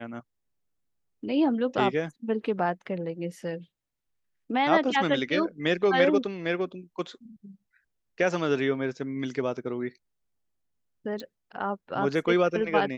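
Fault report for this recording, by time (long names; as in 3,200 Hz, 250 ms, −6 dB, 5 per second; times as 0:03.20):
0:11.20: click −25 dBFS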